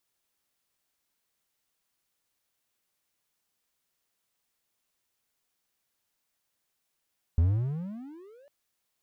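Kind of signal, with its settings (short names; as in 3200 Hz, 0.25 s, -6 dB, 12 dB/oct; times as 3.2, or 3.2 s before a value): gliding synth tone triangle, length 1.10 s, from 78.5 Hz, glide +35 st, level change -36 dB, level -16 dB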